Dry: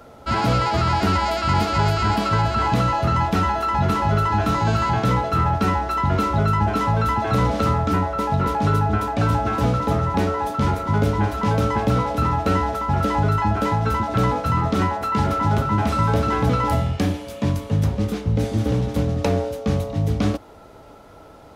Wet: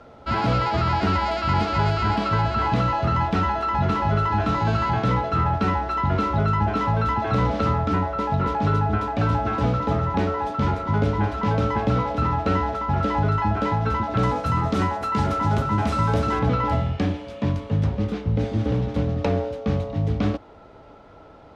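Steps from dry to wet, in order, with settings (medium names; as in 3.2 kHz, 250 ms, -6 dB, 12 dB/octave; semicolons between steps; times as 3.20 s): low-pass 4.4 kHz 12 dB/octave, from 14.23 s 9.2 kHz, from 16.39 s 3.8 kHz; trim -2 dB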